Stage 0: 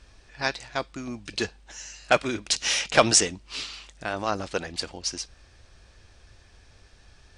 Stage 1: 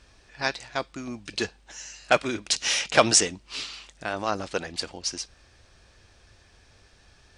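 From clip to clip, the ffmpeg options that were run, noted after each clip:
-af "lowshelf=f=67:g=-7.5"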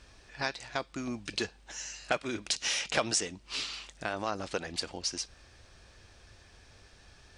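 -af "acompressor=threshold=-31dB:ratio=2.5"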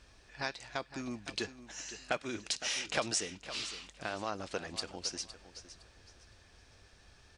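-af "aecho=1:1:511|1022|1533:0.211|0.0571|0.0154,volume=-4dB"

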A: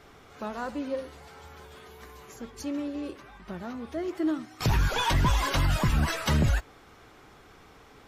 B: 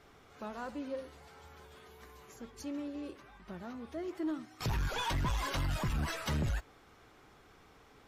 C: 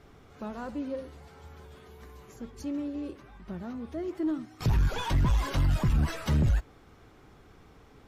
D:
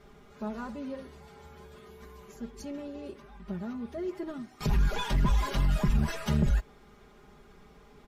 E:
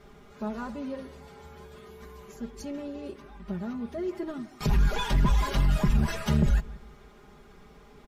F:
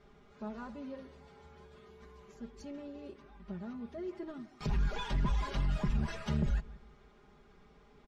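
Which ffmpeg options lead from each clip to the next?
-af "asoftclip=type=tanh:threshold=-20dB,volume=-7dB"
-af "lowshelf=f=400:g=10"
-af "aecho=1:1:4.9:0.81,volume=-2dB"
-filter_complex "[0:a]asplit=2[a][b];[b]adelay=166,lowpass=f=2k:p=1,volume=-19dB,asplit=2[c][d];[d]adelay=166,lowpass=f=2k:p=1,volume=0.4,asplit=2[e][f];[f]adelay=166,lowpass=f=2k:p=1,volume=0.4[g];[a][c][e][g]amix=inputs=4:normalize=0,volume=2.5dB"
-af "lowpass=6k,volume=-8.5dB"

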